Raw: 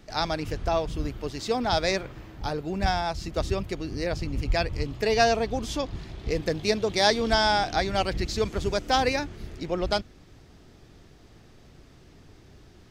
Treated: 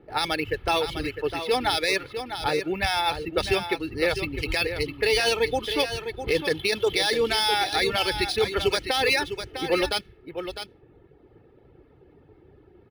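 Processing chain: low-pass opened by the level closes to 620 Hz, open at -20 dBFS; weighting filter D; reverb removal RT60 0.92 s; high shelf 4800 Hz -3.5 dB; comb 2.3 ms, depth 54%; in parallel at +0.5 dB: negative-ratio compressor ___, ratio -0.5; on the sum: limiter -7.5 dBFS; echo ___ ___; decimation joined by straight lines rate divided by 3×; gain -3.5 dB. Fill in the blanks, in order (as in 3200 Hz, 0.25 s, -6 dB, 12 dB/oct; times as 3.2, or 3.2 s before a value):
-23 dBFS, 0.654 s, -9 dB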